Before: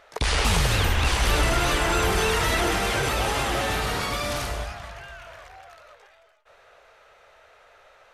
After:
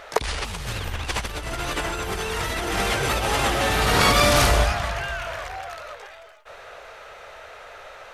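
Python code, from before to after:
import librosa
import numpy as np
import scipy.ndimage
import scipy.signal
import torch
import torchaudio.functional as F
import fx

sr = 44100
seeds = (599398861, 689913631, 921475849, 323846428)

y = fx.over_compress(x, sr, threshold_db=-28.0, ratio=-0.5)
y = y * 10.0 ** (6.5 / 20.0)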